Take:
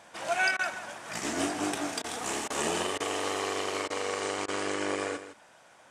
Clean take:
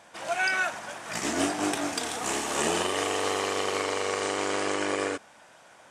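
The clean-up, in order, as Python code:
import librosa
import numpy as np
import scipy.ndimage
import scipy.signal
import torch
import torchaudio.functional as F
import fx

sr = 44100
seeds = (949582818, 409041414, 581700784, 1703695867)

y = fx.fix_interpolate(x, sr, at_s=(0.57, 2.02, 2.48, 2.98, 3.88, 4.46), length_ms=20.0)
y = fx.fix_echo_inverse(y, sr, delay_ms=161, level_db=-12.0)
y = fx.gain(y, sr, db=fx.steps((0.0, 0.0), (0.51, 3.5)))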